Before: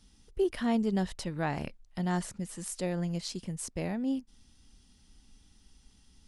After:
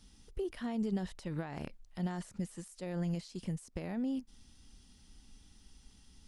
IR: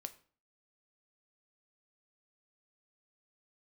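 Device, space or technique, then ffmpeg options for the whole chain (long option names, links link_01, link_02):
de-esser from a sidechain: -filter_complex "[0:a]asplit=2[link_01][link_02];[link_02]highpass=frequency=4700:poles=1,apad=whole_len=276836[link_03];[link_01][link_03]sidechaincompress=threshold=-55dB:ratio=6:attack=3.8:release=58,volume=1dB"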